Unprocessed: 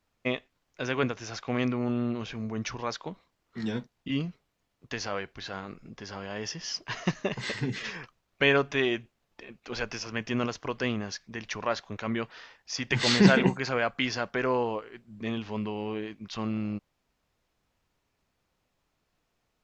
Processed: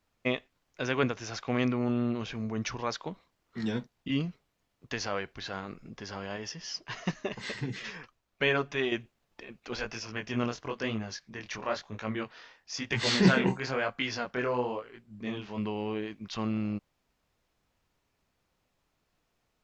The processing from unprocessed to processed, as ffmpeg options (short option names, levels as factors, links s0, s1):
-filter_complex "[0:a]asettb=1/sr,asplit=3[s0][s1][s2];[s0]atrim=end=6.364[s3];[s1]atrim=start=6.36:end=8.92,asetpts=PTS-STARTPTS,afade=t=in:d=0.004:c=qsin,afade=t=out:st=2.556:d=0.004:c=qsin,flanger=delay=2.7:depth=3.8:regen=-55:speed=1.1:shape=triangular[s4];[s2]atrim=start=8.916[s5];[s3][s4]acrossfade=d=0.004:c1=hsin:c2=qsin[s6];[s6][s5]acrossfade=d=0.004:c1=qsin:c2=hsin,asplit=3[s7][s8][s9];[s7]afade=t=out:st=9.75:d=0.02[s10];[s8]flanger=delay=18:depth=7.1:speed=1,afade=t=in:st=9.75:d=0.02,afade=t=out:st=15.57:d=0.02[s11];[s9]afade=t=in:st=15.57:d=0.02[s12];[s10][s11][s12]amix=inputs=3:normalize=0"